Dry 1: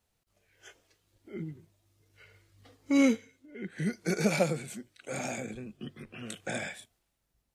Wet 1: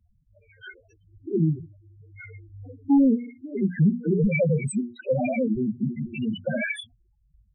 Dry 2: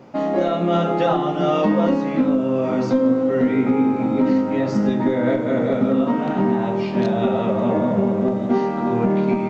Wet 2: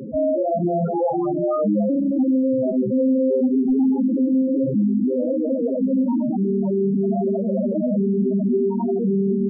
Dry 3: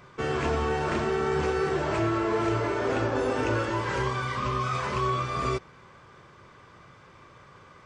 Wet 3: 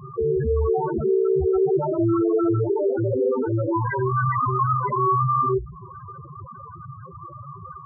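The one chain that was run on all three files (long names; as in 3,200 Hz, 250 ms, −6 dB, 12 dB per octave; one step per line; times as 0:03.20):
mains-hum notches 60/120/180/240/300/360/420/480 Hz
downward compressor 16 to 1, threshold −30 dBFS
sine wavefolder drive 9 dB, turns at −20.5 dBFS
spectral peaks only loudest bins 4
level +7 dB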